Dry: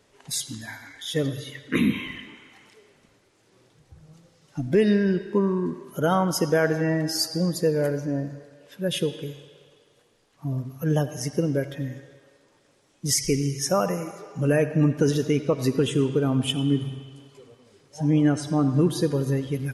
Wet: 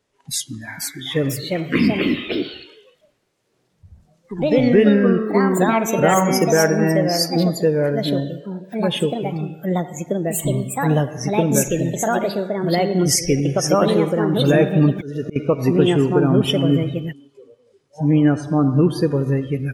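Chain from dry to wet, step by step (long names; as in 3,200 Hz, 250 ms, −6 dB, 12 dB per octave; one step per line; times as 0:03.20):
0:14.44–0:15.36: volume swells 338 ms
noise reduction from a noise print of the clip's start 15 dB
delay with pitch and tempo change per echo 538 ms, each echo +3 semitones, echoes 2
level +5 dB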